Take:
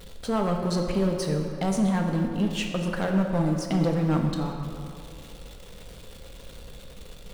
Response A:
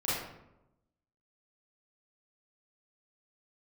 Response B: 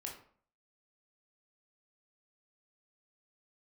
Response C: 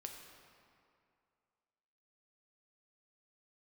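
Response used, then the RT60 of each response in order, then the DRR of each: C; 0.90, 0.50, 2.4 seconds; −10.5, −1.0, 2.0 decibels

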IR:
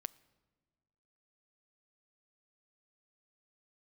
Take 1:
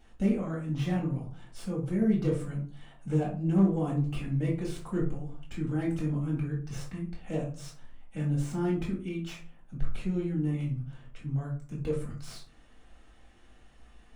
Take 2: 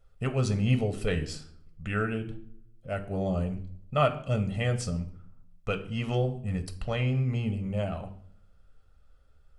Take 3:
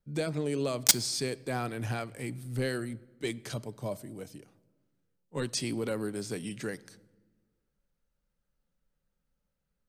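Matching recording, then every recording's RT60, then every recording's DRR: 3; 0.45 s, 0.60 s, non-exponential decay; −4.5, 7.0, 16.0 decibels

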